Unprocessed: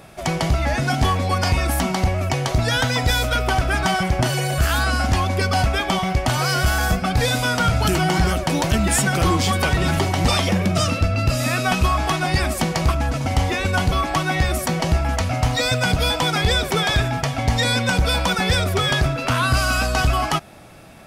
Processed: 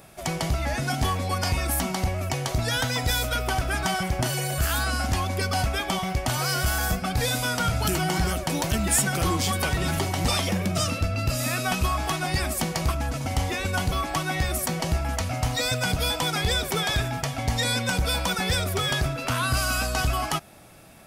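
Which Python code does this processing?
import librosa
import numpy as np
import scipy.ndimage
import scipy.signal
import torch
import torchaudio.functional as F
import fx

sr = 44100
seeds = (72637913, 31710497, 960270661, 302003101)

y = fx.high_shelf(x, sr, hz=8000.0, db=11.0)
y = y * librosa.db_to_amplitude(-6.5)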